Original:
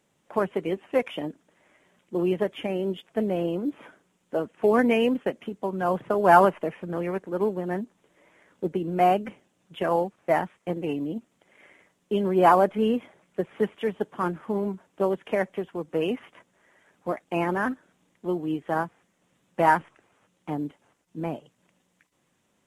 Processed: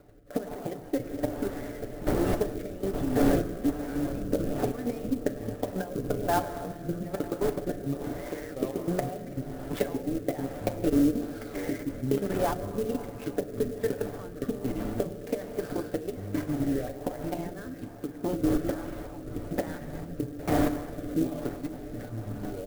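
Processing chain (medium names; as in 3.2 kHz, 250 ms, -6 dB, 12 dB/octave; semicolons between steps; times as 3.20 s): median filter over 15 samples; recorder AGC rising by 76 dB/s; wind noise 590 Hz -25 dBFS; peaking EQ 2.6 kHz -7 dB 0.59 oct; level held to a coarse grid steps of 16 dB; ever faster or slower copies 176 ms, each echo -5 st, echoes 2, each echo -6 dB; comb 6.9 ms, depth 58%; on a send at -7 dB: reverberation RT60 4.0 s, pre-delay 7 ms; on the sum: rotary cabinet horn 1.2 Hz; fifteen-band graphic EQ 160 Hz -11 dB, 400 Hz -4 dB, 1 kHz -10 dB; sampling jitter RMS 0.037 ms; trim -3.5 dB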